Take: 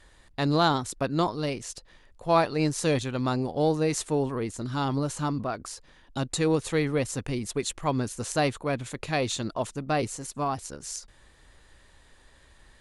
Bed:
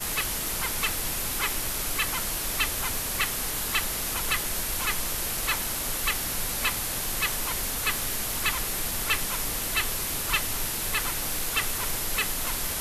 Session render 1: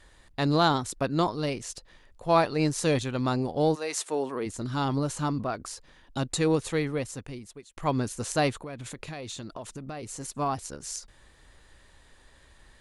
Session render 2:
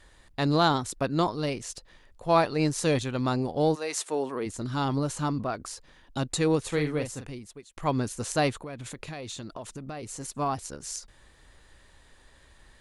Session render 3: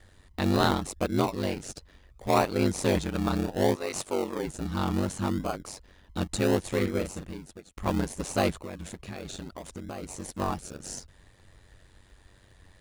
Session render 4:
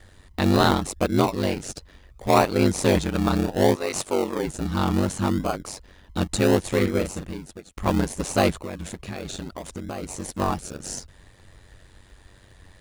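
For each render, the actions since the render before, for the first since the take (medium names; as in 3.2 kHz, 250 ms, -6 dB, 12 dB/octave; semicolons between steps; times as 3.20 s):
3.74–4.45 s: high-pass 800 Hz -> 230 Hz; 6.52–7.77 s: fade out; 8.62–10.20 s: compression 12:1, threshold -34 dBFS
6.68–7.29 s: doubling 40 ms -7 dB
ring modulator 47 Hz; in parallel at -5.5 dB: decimation with a swept rate 34×, swing 60% 0.68 Hz
trim +5.5 dB; peak limiter -3 dBFS, peak gain reduction 1.5 dB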